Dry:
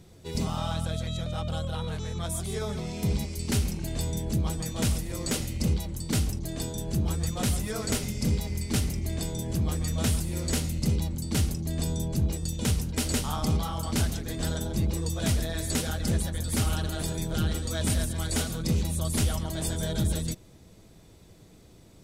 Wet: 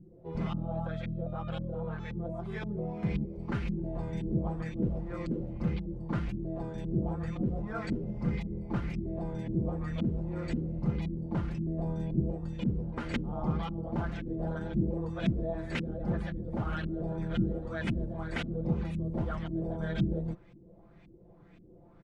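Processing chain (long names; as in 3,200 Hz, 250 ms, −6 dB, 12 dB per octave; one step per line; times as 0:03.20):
auto-filter low-pass saw up 1.9 Hz 240–2,600 Hz
comb filter 5.8 ms, depth 64%
level −5.5 dB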